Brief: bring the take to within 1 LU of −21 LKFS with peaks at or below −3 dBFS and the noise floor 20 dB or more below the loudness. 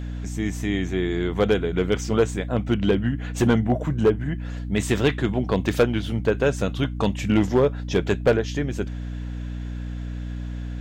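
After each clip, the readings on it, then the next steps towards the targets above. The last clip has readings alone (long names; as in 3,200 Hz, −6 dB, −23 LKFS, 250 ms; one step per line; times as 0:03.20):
share of clipped samples 0.5%; peaks flattened at −11.0 dBFS; mains hum 60 Hz; hum harmonics up to 300 Hz; level of the hum −28 dBFS; integrated loudness −24.0 LKFS; sample peak −11.0 dBFS; target loudness −21.0 LKFS
→ clipped peaks rebuilt −11 dBFS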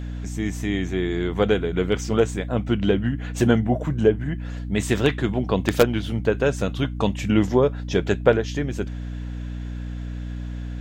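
share of clipped samples 0.0%; mains hum 60 Hz; hum harmonics up to 300 Hz; level of the hum −28 dBFS
→ mains-hum notches 60/120/180/240/300 Hz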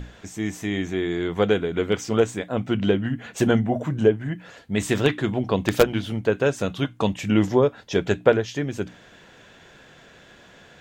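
mains hum none found; integrated loudness −23.5 LKFS; sample peak −1.5 dBFS; target loudness −21.0 LKFS
→ level +2.5 dB
brickwall limiter −3 dBFS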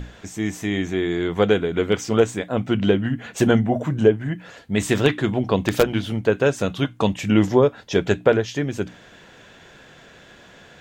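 integrated loudness −21.0 LKFS; sample peak −3.0 dBFS; background noise floor −48 dBFS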